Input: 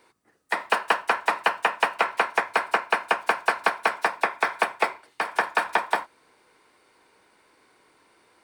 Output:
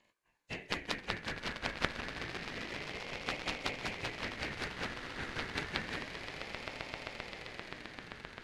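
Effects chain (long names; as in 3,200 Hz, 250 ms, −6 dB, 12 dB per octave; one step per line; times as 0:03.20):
partials spread apart or drawn together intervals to 86%
0:01.94–0:03.22: volume swells 100 ms
harmonic generator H 3 −7 dB, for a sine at −9.5 dBFS
on a send: echo that builds up and dies away 131 ms, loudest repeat 8, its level −14 dB
on the sum: ring modulator whose carrier an LFO sweeps 1,100 Hz, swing 25%, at 0.29 Hz
level +2.5 dB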